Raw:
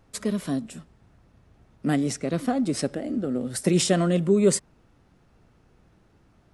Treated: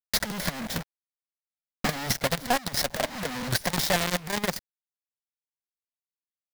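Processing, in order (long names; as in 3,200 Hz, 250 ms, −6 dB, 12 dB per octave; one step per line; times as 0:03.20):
parametric band 1,000 Hz +2 dB 2.8 octaves
downward compressor 16 to 1, threshold −24 dBFS, peak gain reduction 12 dB
fuzz pedal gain 43 dB, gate −45 dBFS
phaser with its sweep stopped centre 1,800 Hz, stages 8
log-companded quantiser 2 bits
transient designer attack +11 dB, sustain −12 dB
soft clipping −4.5 dBFS, distortion −3 dB
level −7 dB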